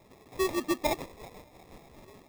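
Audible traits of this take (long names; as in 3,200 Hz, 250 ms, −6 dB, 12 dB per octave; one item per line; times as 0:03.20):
aliases and images of a low sample rate 1,500 Hz, jitter 0%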